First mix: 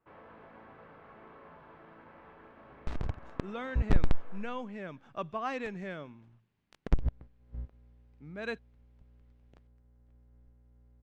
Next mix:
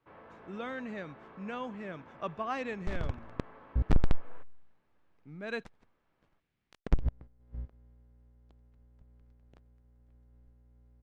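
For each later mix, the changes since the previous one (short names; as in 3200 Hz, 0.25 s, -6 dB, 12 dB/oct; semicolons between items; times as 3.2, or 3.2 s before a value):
speech: entry -2.95 s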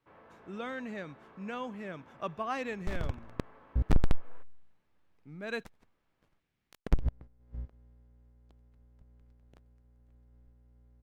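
first sound -4.0 dB; master: remove air absorption 59 m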